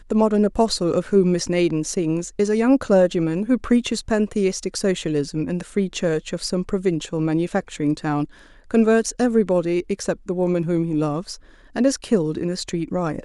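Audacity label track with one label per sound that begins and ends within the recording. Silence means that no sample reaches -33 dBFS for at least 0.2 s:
8.710000	11.350000	sound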